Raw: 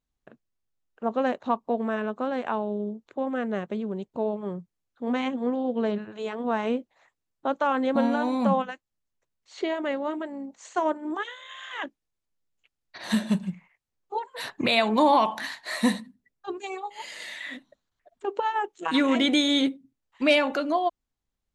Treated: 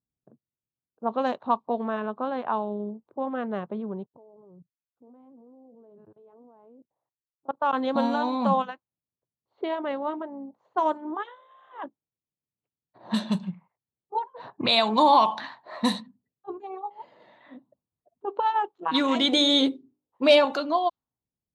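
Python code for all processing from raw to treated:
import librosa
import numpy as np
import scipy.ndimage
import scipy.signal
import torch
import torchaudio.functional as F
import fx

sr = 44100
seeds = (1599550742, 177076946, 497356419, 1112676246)

y = fx.chain(x, sr, fx.peak_eq(hz=210.0, db=-12.5, octaves=0.25),
    fx.level_steps(step_db=24), at=(4.06, 7.73))
y = fx.chain(y, sr, fx.peak_eq(hz=440.0, db=8.5, octaves=1.1),
    fx.hum_notches(base_hz=50, count=8),
    fx.doubler(ms=12.0, db=-14), at=(19.32, 20.45))
y = scipy.signal.sosfilt(scipy.signal.butter(2, 93.0, 'highpass', fs=sr, output='sos'), y)
y = fx.env_lowpass(y, sr, base_hz=390.0, full_db=-18.5)
y = fx.graphic_eq(y, sr, hz=(125, 1000, 2000, 4000), db=(5, 8, -5, 10))
y = y * librosa.db_to_amplitude(-3.5)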